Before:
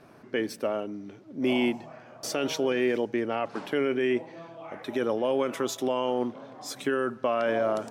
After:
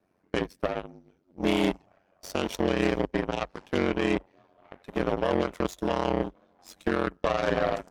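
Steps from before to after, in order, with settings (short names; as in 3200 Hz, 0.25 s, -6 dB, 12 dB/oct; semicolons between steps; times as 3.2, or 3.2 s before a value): bin magnitudes rounded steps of 15 dB; added harmonics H 2 -8 dB, 3 -37 dB, 5 -30 dB, 7 -17 dB, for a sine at -15.5 dBFS; ring modulator 46 Hz; gain +2.5 dB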